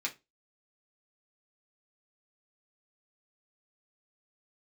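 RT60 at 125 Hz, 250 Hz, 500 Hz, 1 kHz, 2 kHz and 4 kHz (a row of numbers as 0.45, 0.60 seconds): 0.25, 0.25, 0.25, 0.20, 0.20, 0.20 seconds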